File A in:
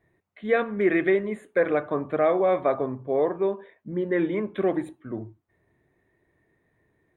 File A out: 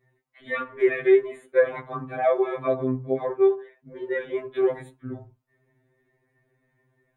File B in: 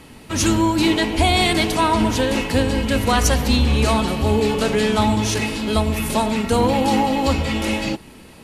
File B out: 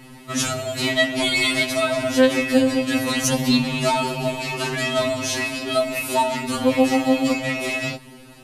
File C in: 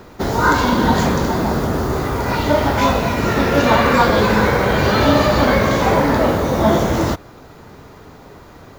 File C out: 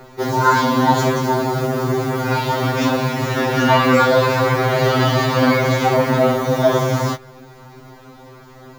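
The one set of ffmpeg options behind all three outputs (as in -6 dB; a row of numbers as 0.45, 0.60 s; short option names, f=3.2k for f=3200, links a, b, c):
-af "afftfilt=real='re*2.45*eq(mod(b,6),0)':imag='im*2.45*eq(mod(b,6),0)':win_size=2048:overlap=0.75,volume=1.5dB"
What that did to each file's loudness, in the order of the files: +0.5, -2.0, -1.0 LU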